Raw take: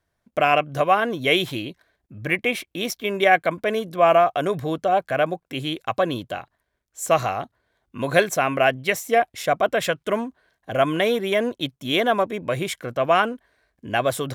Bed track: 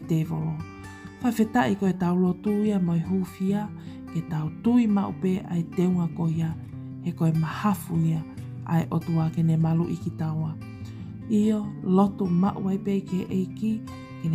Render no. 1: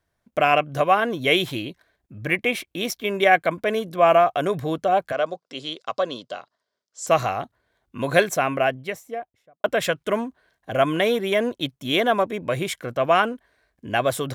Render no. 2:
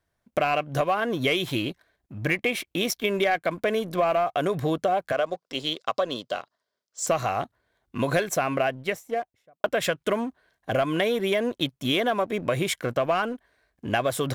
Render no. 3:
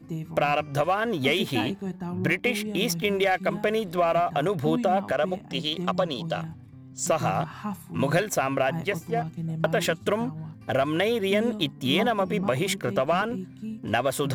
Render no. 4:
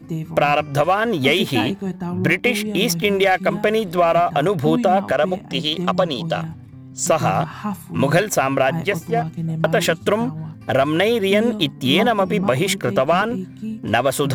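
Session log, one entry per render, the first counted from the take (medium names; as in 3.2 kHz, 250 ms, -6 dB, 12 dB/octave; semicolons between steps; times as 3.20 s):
5.12–7.07 s: cabinet simulation 310–7500 Hz, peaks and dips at 330 Hz -8 dB, 820 Hz -7 dB, 1.7 kHz -7 dB, 2.4 kHz -9 dB, 4.9 kHz +9 dB; 8.22–9.64 s: studio fade out
waveshaping leveller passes 1; compression 6:1, threshold -21 dBFS, peak gain reduction 11.5 dB
add bed track -9 dB
trim +7 dB; peak limiter -3 dBFS, peak gain reduction 1 dB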